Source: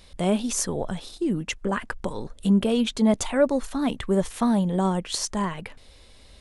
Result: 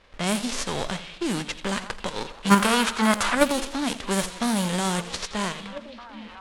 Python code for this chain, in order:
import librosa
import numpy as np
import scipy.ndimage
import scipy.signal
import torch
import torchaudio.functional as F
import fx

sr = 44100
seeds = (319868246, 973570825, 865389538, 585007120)

p1 = fx.envelope_flatten(x, sr, power=0.3)
p2 = fx.echo_stepped(p1, sr, ms=783, hz=3100.0, octaves=-1.4, feedback_pct=70, wet_db=-8.5)
p3 = fx.env_lowpass(p2, sr, base_hz=2300.0, full_db=-16.5)
p4 = fx.level_steps(p3, sr, step_db=16)
p5 = p3 + (p4 * librosa.db_to_amplitude(3.0))
p6 = fx.peak_eq(p5, sr, hz=1300.0, db=13.5, octaves=1.3, at=(2.5, 3.35))
p7 = fx.echo_warbled(p6, sr, ms=84, feedback_pct=49, rate_hz=2.8, cents=75, wet_db=-15)
y = p7 * librosa.db_to_amplitude(-5.5)